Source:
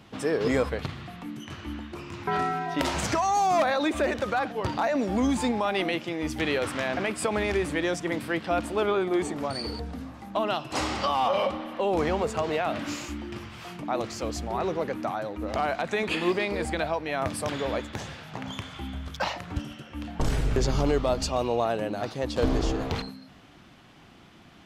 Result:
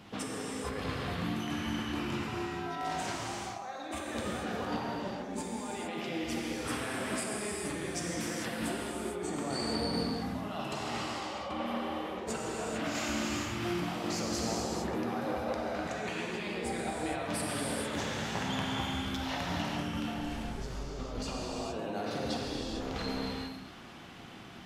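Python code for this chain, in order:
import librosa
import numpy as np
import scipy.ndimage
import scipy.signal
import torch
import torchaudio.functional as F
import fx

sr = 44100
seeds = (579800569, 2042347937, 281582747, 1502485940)

p1 = fx.low_shelf(x, sr, hz=120.0, db=-4.5)
p2 = fx.over_compress(p1, sr, threshold_db=-35.0, ratio=-1.0)
p3 = p2 + fx.echo_single(p2, sr, ms=137, db=-15.0, dry=0)
p4 = fx.rev_gated(p3, sr, seeds[0], gate_ms=480, shape='flat', drr_db=-4.0)
y = F.gain(torch.from_numpy(p4), -6.5).numpy()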